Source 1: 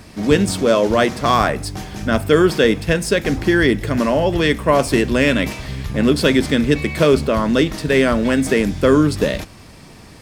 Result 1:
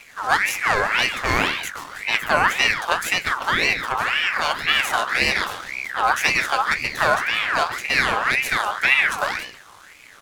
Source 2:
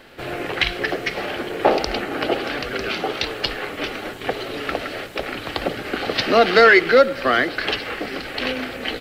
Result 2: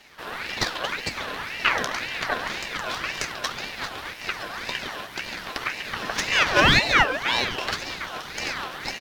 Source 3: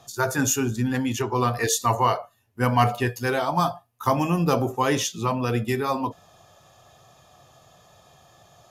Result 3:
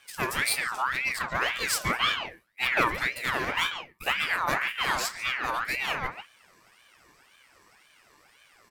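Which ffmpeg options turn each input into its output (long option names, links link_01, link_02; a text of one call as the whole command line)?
ffmpeg -i in.wav -filter_complex "[0:a]aeval=exprs='if(lt(val(0),0),0.447*val(0),val(0))':channel_layout=same,highshelf=frequency=8100:gain=6,flanger=delay=7.2:depth=9.2:regen=55:speed=1.8:shape=sinusoidal,asplit=2[link_01][link_02];[link_02]adelay=140,highpass=300,lowpass=3400,asoftclip=type=hard:threshold=-16dB,volume=-8dB[link_03];[link_01][link_03]amix=inputs=2:normalize=0,aeval=exprs='val(0)*sin(2*PI*1700*n/s+1700*0.4/1.9*sin(2*PI*1.9*n/s))':channel_layout=same,volume=3dB" out.wav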